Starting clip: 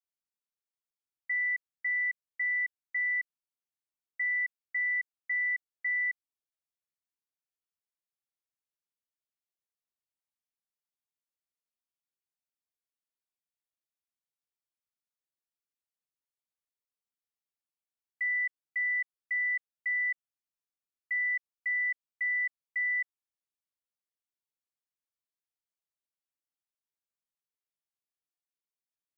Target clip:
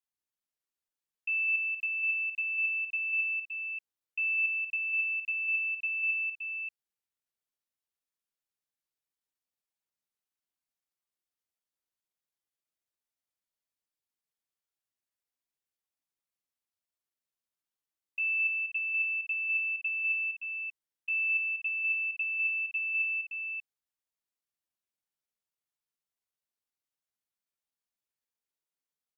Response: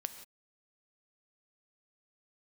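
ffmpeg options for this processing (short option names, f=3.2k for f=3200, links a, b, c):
-af "aecho=1:1:188|245|578:0.531|0.299|0.447,asetrate=58866,aresample=44100,atempo=0.749154"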